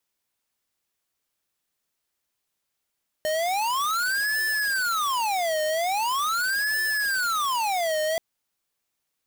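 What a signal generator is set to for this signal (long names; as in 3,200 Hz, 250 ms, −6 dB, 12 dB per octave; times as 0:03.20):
siren wail 616–1,750 Hz 0.42 per second square −25 dBFS 4.93 s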